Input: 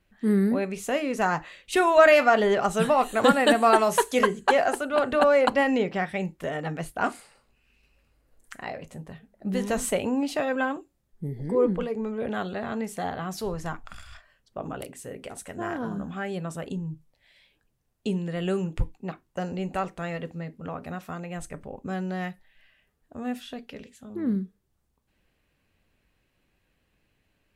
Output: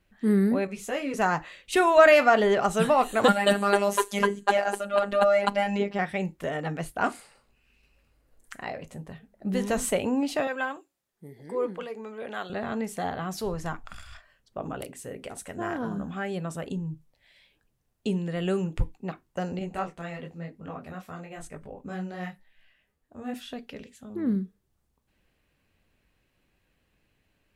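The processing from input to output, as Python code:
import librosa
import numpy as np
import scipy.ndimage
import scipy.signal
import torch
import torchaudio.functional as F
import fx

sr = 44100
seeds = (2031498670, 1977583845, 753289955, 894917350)

y = fx.ensemble(x, sr, at=(0.67, 1.14))
y = fx.robotise(y, sr, hz=201.0, at=(3.28, 5.99))
y = fx.highpass(y, sr, hz=860.0, slope=6, at=(10.47, 12.5))
y = fx.detune_double(y, sr, cents=34, at=(19.59, 23.34))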